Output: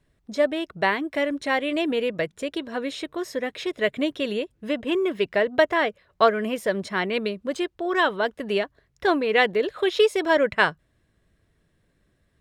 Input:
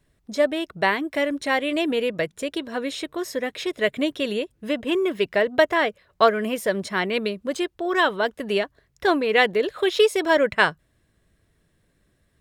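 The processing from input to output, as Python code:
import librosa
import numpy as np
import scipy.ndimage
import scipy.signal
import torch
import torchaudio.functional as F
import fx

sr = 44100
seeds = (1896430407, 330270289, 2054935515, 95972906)

y = fx.high_shelf(x, sr, hz=7300.0, db=-8.0)
y = y * 10.0 ** (-1.0 / 20.0)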